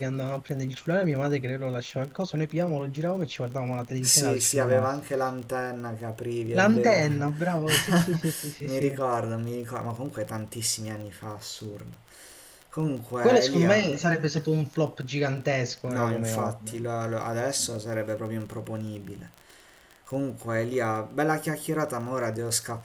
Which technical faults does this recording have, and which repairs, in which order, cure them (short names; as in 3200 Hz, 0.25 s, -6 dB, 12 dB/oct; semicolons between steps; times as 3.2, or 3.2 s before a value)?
crackle 27/s -34 dBFS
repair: de-click